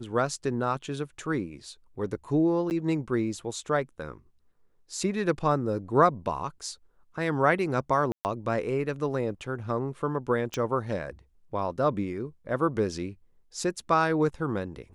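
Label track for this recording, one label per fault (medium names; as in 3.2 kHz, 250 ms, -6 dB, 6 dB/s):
2.700000	2.710000	dropout 9.3 ms
8.120000	8.250000	dropout 129 ms
10.540000	10.540000	pop -17 dBFS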